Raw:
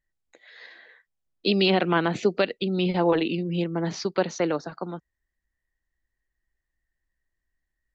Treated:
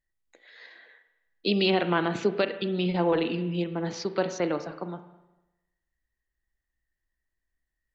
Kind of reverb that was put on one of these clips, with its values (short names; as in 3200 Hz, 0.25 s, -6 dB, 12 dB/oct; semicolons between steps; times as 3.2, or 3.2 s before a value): spring tank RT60 1 s, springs 34/50 ms, chirp 80 ms, DRR 9.5 dB; gain -3 dB